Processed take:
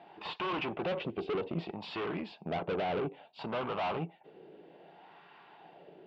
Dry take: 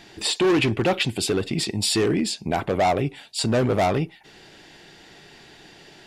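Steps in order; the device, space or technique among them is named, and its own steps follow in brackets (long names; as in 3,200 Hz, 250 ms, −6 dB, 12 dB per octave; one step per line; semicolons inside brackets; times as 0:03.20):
wah-wah guitar rig (LFO wah 0.61 Hz 430–1,100 Hz, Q 2.7; tube saturation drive 37 dB, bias 0.6; loudspeaker in its box 84–3,800 Hz, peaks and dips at 170 Hz +10 dB, 1,800 Hz −5 dB, 2,800 Hz +4 dB)
level +6 dB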